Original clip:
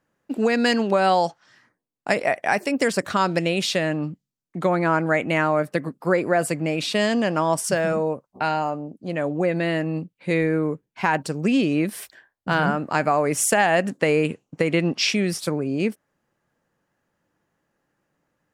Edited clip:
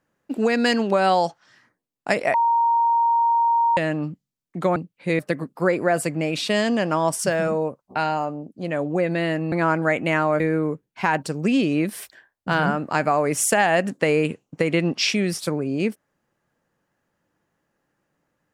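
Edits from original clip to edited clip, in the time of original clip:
2.34–3.77 s: bleep 931 Hz -15.5 dBFS
4.76–5.64 s: swap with 9.97–10.40 s

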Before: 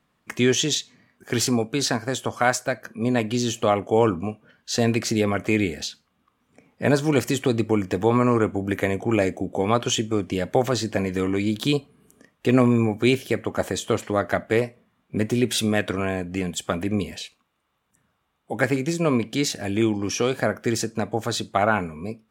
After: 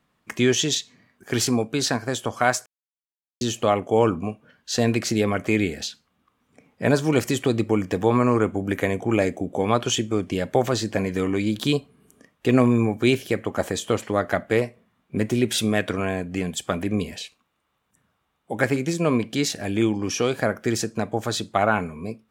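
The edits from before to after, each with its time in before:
2.66–3.41 s: mute

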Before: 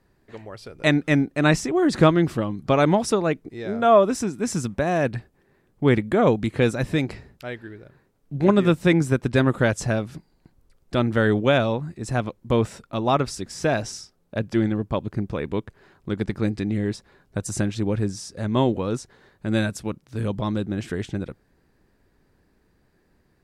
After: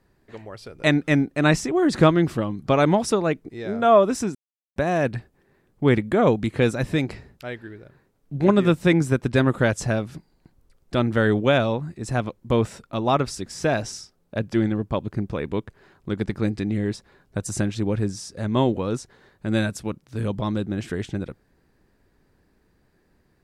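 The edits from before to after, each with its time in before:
4.35–4.76 s: mute

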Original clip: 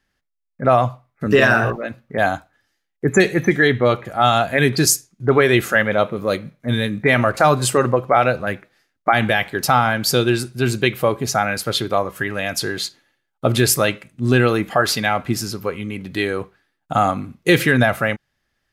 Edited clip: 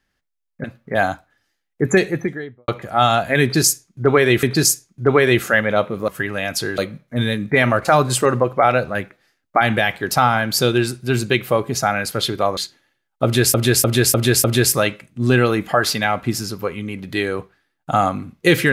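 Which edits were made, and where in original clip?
0.64–1.87 s: delete
3.07–3.91 s: studio fade out
4.65–5.66 s: loop, 2 plays
12.09–12.79 s: move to 6.30 s
13.46–13.76 s: loop, 5 plays

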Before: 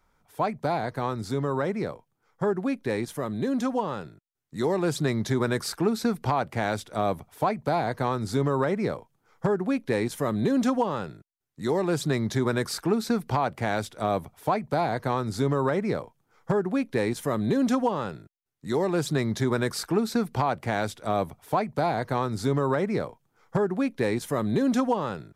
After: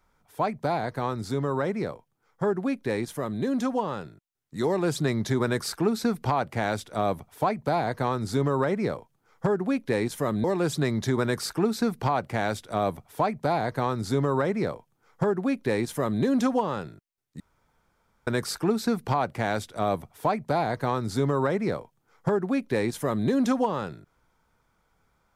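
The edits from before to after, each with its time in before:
10.44–11.72 s: delete
18.68–19.55 s: room tone

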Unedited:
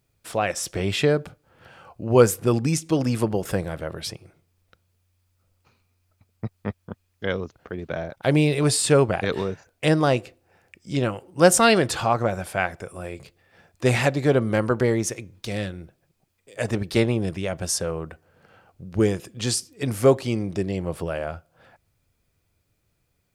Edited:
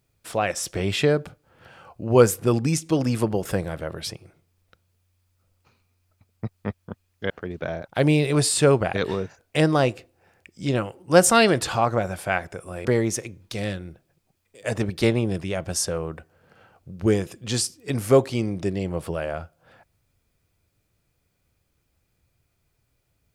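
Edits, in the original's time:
7.30–7.58 s: delete
13.13–14.78 s: delete

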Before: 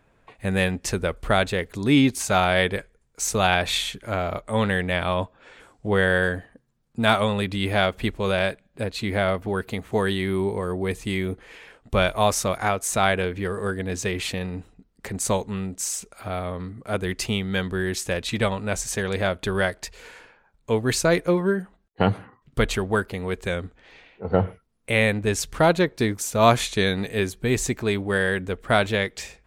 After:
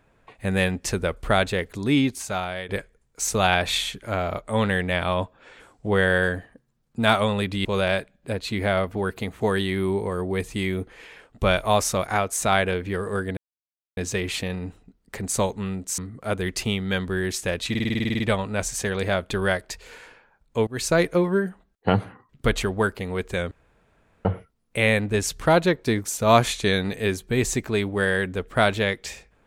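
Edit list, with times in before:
1.62–2.69 s: fade out, to -15.5 dB
7.65–8.16 s: delete
13.88 s: insert silence 0.60 s
15.89–16.61 s: delete
18.33 s: stutter 0.05 s, 11 plays
20.80–21.05 s: fade in, from -22.5 dB
23.64–24.38 s: room tone

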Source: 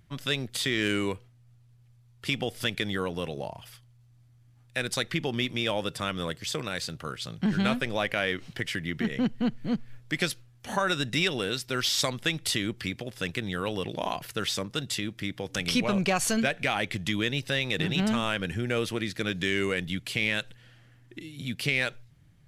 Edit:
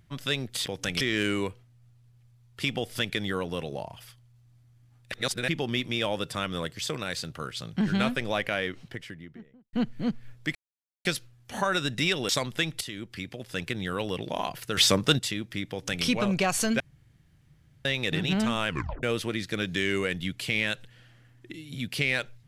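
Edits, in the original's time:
4.77–5.13 s: reverse
7.99–9.38 s: studio fade out
10.20 s: insert silence 0.50 s
11.44–11.96 s: delete
12.48–13.35 s: fade in linear, from -12 dB
14.44–14.86 s: gain +9.5 dB
15.37–15.72 s: copy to 0.66 s
16.47–17.52 s: room tone
18.35 s: tape stop 0.35 s

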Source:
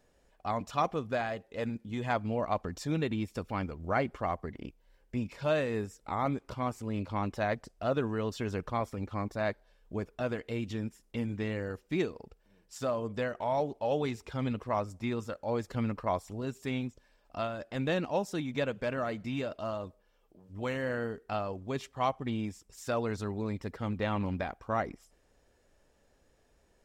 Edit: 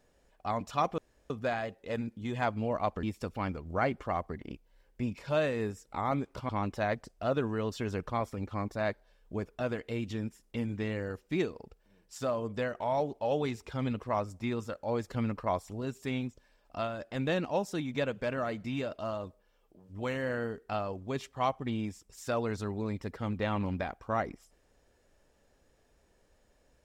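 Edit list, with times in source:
0.98 s: insert room tone 0.32 s
2.71–3.17 s: delete
6.63–7.09 s: delete

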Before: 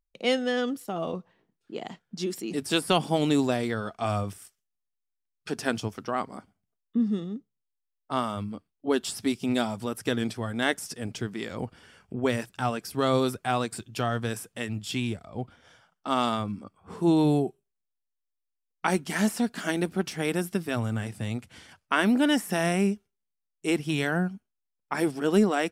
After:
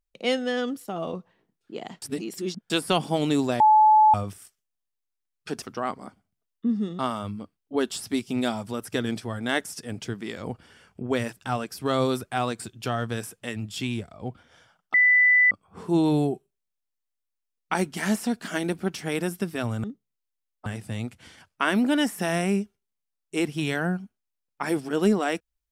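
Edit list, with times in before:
2.02–2.70 s: reverse
3.60–4.14 s: bleep 861 Hz -12.5 dBFS
5.62–5.93 s: delete
7.30–8.12 s: move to 20.97 s
16.07–16.64 s: bleep 1.99 kHz -14.5 dBFS

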